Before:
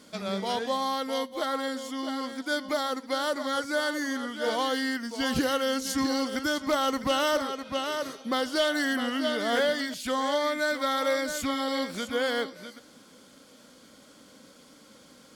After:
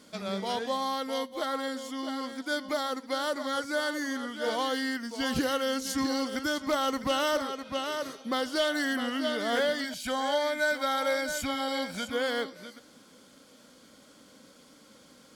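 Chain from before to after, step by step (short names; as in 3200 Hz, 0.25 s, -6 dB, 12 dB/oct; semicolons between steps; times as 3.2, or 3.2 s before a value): 9.84–12.1 comb 1.3 ms, depth 58%; gain -2 dB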